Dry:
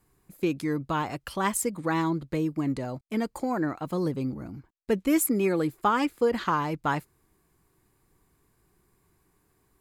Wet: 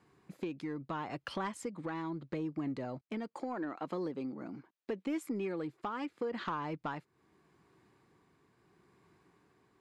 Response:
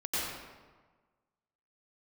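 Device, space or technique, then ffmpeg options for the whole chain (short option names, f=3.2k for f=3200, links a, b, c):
AM radio: -filter_complex "[0:a]asettb=1/sr,asplit=3[a][b][c];[a]atrim=end=3.284[d];[b]atrim=start=3.28:end=5.07,asetpts=PTS-STARTPTS,afade=t=in:d=0.004:c=qsin,afade=t=out:st=1.786:d=0.004:c=qsin,highpass=230[e];[c]atrim=start=5.066[f];[d][e]acrossfade=d=0.004:c1=hsin:c2=qsin[g];[g][f]acrossfade=d=0.004:c1=qsin:c2=hsin,highpass=140,lowpass=4.2k,acompressor=threshold=-39dB:ratio=4,asoftclip=type=tanh:threshold=-29.5dB,tremolo=f=0.77:d=0.27,volume=4dB"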